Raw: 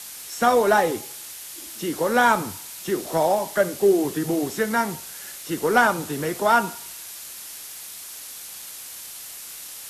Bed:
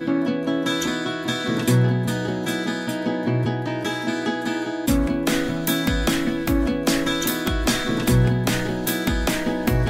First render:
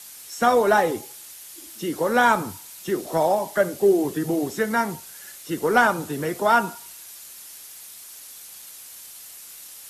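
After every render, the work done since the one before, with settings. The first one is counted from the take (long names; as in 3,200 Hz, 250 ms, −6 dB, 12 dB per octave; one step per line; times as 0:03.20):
broadband denoise 6 dB, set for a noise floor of −39 dBFS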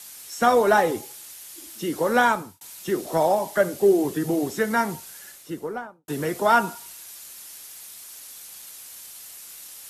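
0:02.18–0:02.61: fade out
0:05.10–0:06.08: fade out and dull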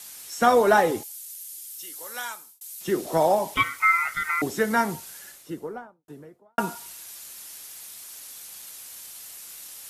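0:01.03–0:02.81: first difference
0:03.54–0:04.42: ring modulation 1,700 Hz
0:05.13–0:06.58: fade out and dull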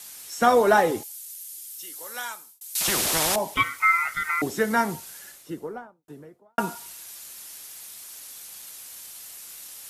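0:02.75–0:03.36: every bin compressed towards the loudest bin 4 to 1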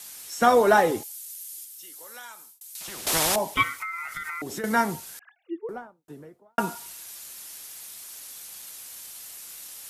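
0:01.64–0:03.07: downward compressor 2.5 to 1, threshold −42 dBFS
0:03.81–0:04.64: downward compressor 16 to 1, threshold −29 dBFS
0:05.19–0:05.69: three sine waves on the formant tracks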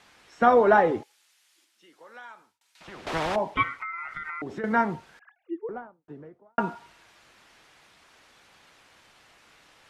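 low-pass filter 2,100 Hz 12 dB per octave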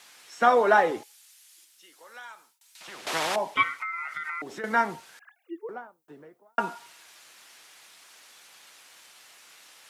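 high-pass filter 58 Hz
RIAA equalisation recording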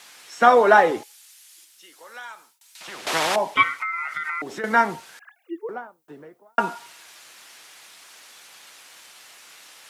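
level +5.5 dB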